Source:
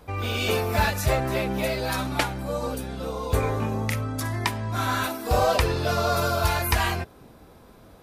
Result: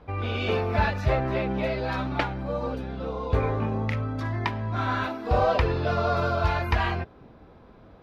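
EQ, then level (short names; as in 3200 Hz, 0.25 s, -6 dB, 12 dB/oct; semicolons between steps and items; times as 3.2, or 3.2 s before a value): air absorption 270 m; 0.0 dB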